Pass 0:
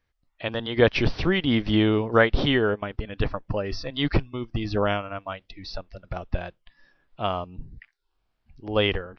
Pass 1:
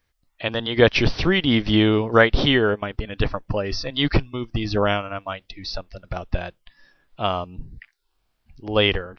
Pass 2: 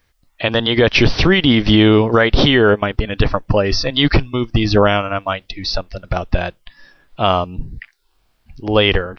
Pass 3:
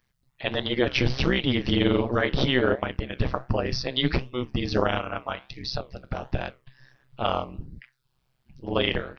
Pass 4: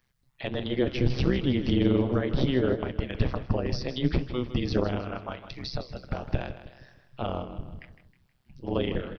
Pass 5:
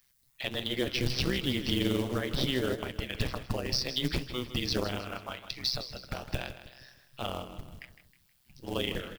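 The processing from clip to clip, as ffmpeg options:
-af "highshelf=f=4.1k:g=8,volume=3dB"
-af "alimiter=level_in=10.5dB:limit=-1dB:release=50:level=0:latency=1,volume=-1dB"
-af "flanger=delay=8.4:depth=9.1:regen=75:speed=1.4:shape=triangular,tremolo=f=130:d=0.947,volume=-2.5dB"
-filter_complex "[0:a]acrossover=split=500[a][b];[b]acompressor=threshold=-35dB:ratio=6[c];[a][c]amix=inputs=2:normalize=0,aecho=1:1:158|316|474|632:0.251|0.108|0.0464|0.02"
-af "crystalizer=i=8:c=0,acrusher=bits=4:mode=log:mix=0:aa=0.000001,volume=-7dB"

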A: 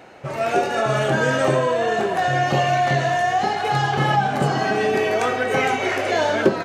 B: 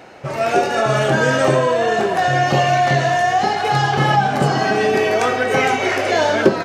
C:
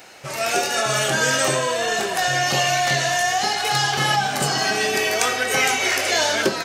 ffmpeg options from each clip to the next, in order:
-af "equalizer=f=5.2k:w=3.5:g=4,volume=3.5dB"
-af "crystalizer=i=9.5:c=0,volume=-9.5dB"

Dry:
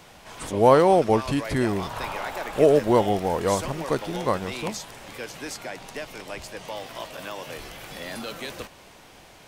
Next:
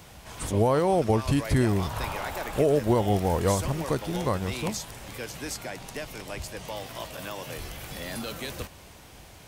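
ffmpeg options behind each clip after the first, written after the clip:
-af "highshelf=f=7.2k:g=8.5,alimiter=limit=-12dB:level=0:latency=1:release=198,equalizer=f=68:t=o:w=2.3:g=12.5,volume=-2.5dB"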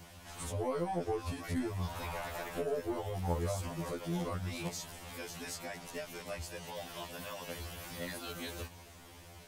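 -af "acompressor=threshold=-34dB:ratio=1.5,asoftclip=type=tanh:threshold=-22.5dB,afftfilt=real='re*2*eq(mod(b,4),0)':imag='im*2*eq(mod(b,4),0)':win_size=2048:overlap=0.75,volume=-2.5dB"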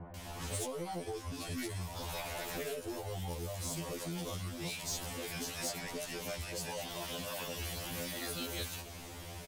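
-filter_complex "[0:a]acrossover=split=2700[a][b];[a]acompressor=threshold=-44dB:ratio=6[c];[c][b]amix=inputs=2:normalize=0,asoftclip=type=tanh:threshold=-39.5dB,acrossover=split=1300[d][e];[e]adelay=140[f];[d][f]amix=inputs=2:normalize=0,volume=7.5dB"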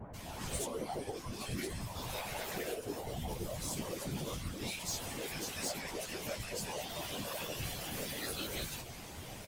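-af "afftfilt=real='hypot(re,im)*cos(2*PI*random(0))':imag='hypot(re,im)*sin(2*PI*random(1))':win_size=512:overlap=0.75,volume=6dB"

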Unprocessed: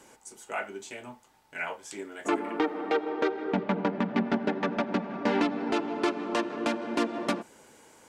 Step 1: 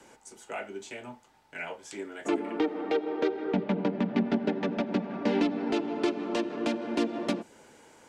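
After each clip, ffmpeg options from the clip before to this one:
-filter_complex "[0:a]highshelf=f=9.2k:g=-11,bandreject=f=1.1k:w=20,acrossover=split=260|700|2200[a][b][c][d];[c]acompressor=threshold=-45dB:ratio=6[e];[a][b][e][d]amix=inputs=4:normalize=0,volume=1dB"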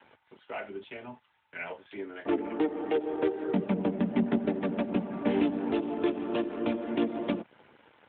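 -filter_complex "[0:a]acrossover=split=120|1000|1900[a][b][c][d];[b]aeval=exprs='val(0)*gte(abs(val(0)),0.00188)':c=same[e];[a][e][c][d]amix=inputs=4:normalize=0" -ar 8000 -c:a libopencore_amrnb -b:a 12200

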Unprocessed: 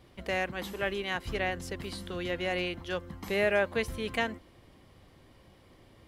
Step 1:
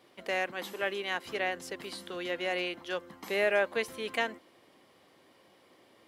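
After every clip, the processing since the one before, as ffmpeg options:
-af "highpass=310"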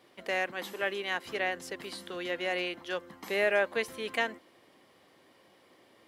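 -af "equalizer=f=1.8k:w=4.7:g=2"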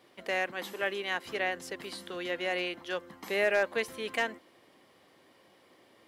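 -af "asoftclip=type=hard:threshold=-17.5dB"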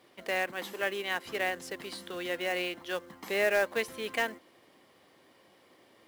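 -af "acrusher=bits=4:mode=log:mix=0:aa=0.000001"

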